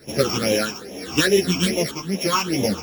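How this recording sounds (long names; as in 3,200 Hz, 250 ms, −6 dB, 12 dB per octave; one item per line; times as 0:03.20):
a buzz of ramps at a fixed pitch in blocks of 8 samples
phaser sweep stages 8, 2.4 Hz, lowest notch 520–1,400 Hz
tremolo triangle 0.85 Hz, depth 80%
a shimmering, thickened sound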